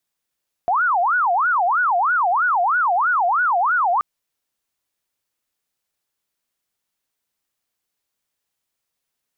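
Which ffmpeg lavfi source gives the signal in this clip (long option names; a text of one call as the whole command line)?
ffmpeg -f lavfi -i "aevalsrc='0.178*sin(2*PI*(1085.5*t-394.5/(2*PI*3.1)*sin(2*PI*3.1*t)))':duration=3.33:sample_rate=44100" out.wav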